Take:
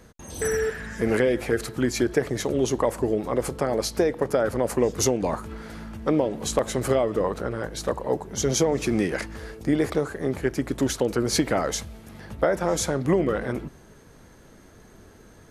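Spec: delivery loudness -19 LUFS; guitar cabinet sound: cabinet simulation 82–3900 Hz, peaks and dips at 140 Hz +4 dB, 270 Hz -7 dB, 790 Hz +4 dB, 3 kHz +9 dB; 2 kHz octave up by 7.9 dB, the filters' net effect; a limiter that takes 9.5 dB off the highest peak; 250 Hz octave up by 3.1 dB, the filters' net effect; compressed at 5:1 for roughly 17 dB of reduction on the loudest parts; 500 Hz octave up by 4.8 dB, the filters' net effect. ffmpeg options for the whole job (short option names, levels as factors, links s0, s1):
-af "equalizer=f=250:t=o:g=6.5,equalizer=f=500:t=o:g=3.5,equalizer=f=2000:t=o:g=8.5,acompressor=threshold=0.0251:ratio=5,alimiter=level_in=1.33:limit=0.0631:level=0:latency=1,volume=0.75,highpass=82,equalizer=f=140:t=q:w=4:g=4,equalizer=f=270:t=q:w=4:g=-7,equalizer=f=790:t=q:w=4:g=4,equalizer=f=3000:t=q:w=4:g=9,lowpass=f=3900:w=0.5412,lowpass=f=3900:w=1.3066,volume=9.44"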